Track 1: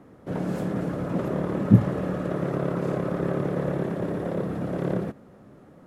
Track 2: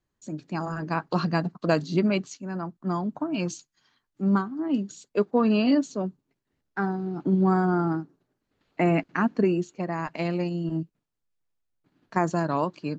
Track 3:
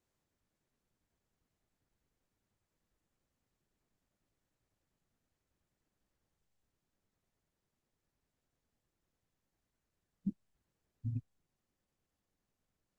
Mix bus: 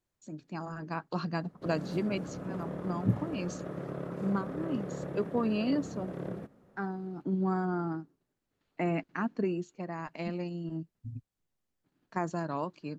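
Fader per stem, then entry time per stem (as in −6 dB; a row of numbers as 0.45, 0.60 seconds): −11.5, −8.5, −3.5 decibels; 1.35, 0.00, 0.00 seconds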